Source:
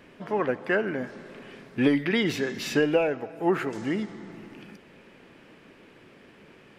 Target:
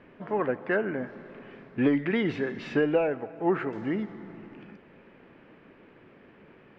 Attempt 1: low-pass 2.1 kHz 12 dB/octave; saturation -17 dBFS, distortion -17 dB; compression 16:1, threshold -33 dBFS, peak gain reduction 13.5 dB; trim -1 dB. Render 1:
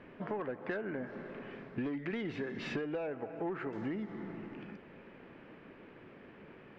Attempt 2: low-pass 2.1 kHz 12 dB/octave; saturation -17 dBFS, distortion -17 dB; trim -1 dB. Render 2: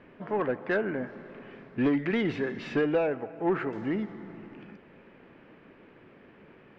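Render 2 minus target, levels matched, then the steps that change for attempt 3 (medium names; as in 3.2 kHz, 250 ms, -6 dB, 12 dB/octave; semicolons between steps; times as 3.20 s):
saturation: distortion +13 dB
change: saturation -8.5 dBFS, distortion -30 dB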